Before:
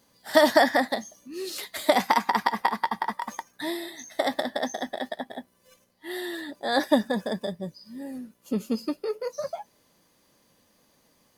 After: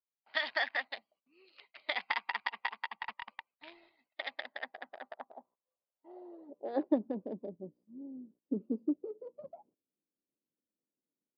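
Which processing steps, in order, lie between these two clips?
Wiener smoothing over 25 samples; gate -53 dBFS, range -19 dB; band-pass sweep 2500 Hz -> 300 Hz, 4.23–7.11; 3.02–4.01 sample leveller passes 1; downsampling 11025 Hz; harmonic-percussive split harmonic -7 dB

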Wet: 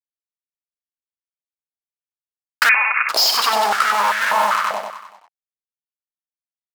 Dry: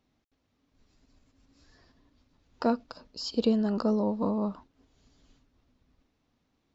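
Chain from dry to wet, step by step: in parallel at 0 dB: compressor, threshold -35 dBFS, peak gain reduction 15 dB; on the sum: fuzz box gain 49 dB, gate -43 dBFS; on a send: feedback echo 95 ms, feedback 55%, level -5 dB; 2.69–3.09 on the sum: inverted band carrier 2700 Hz; maximiser +11 dB; stepped high-pass 5.1 Hz 710–1600 Hz; gain -9 dB

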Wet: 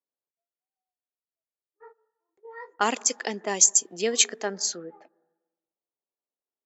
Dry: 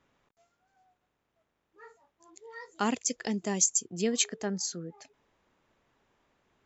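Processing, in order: HPF 440 Hz 12 dB/oct; gate -54 dBFS, range -29 dB; low-pass opened by the level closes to 630 Hz, open at -29.5 dBFS; on a send: elliptic low-pass 1800 Hz + reverb RT60 1.1 s, pre-delay 97 ms, DRR 25 dB; on the sum: gain +7.5 dB

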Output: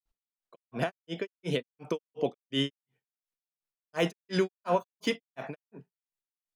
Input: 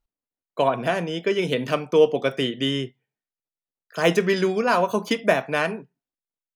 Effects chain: limiter -15.5 dBFS, peak gain reduction 10.5 dB; grains 0.205 s, grains 2.8/s, spray 0.1 s, pitch spread up and down by 0 st

